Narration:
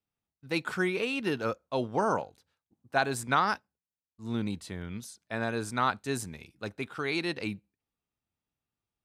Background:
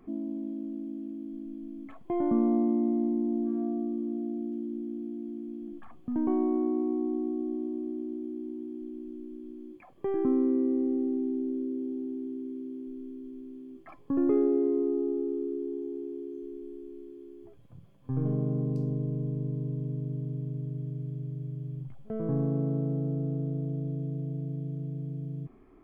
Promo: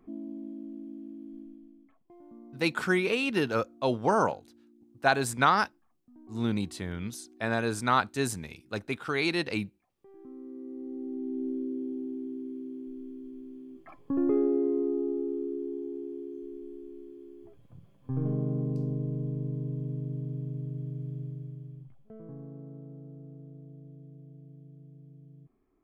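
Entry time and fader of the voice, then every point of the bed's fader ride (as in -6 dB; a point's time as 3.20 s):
2.10 s, +3.0 dB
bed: 1.40 s -5 dB
2.16 s -25 dB
10.07 s -25 dB
11.46 s -1 dB
21.22 s -1 dB
22.36 s -16 dB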